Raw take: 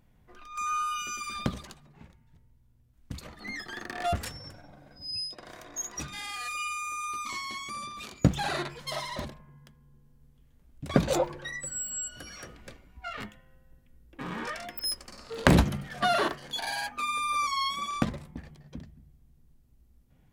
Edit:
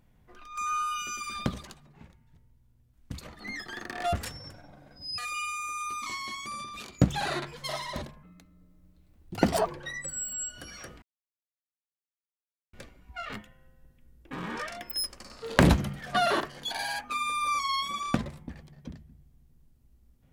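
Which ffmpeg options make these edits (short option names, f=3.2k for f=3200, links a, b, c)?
-filter_complex "[0:a]asplit=5[a][b][c][d][e];[a]atrim=end=5.182[f];[b]atrim=start=6.408:end=9.464[g];[c]atrim=start=9.46:end=11.25,asetpts=PTS-STARTPTS,asetrate=55125,aresample=44100,atrim=end_sample=63151,asetpts=PTS-STARTPTS[h];[d]atrim=start=11.246:end=12.61,asetpts=PTS-STARTPTS,afade=t=out:st=1.36:d=0.004:c=hsin,apad=pad_dur=1.71[i];[e]atrim=start=12.61,asetpts=PTS-STARTPTS,afade=t=in:d=0.004:c=hsin[j];[f][g]acrossfade=d=0.004:c1=hsin:c2=hsin[k];[k][h]acrossfade=d=0.004:c1=hsin:c2=hsin[l];[i][j]concat=n=2:v=0:a=1[m];[l][m]acrossfade=d=0.004:c1=hsin:c2=hsin"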